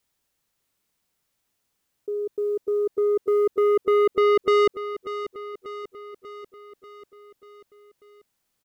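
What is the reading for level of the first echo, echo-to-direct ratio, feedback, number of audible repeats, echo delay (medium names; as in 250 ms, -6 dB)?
-12.0 dB, -10.0 dB, 58%, 5, 590 ms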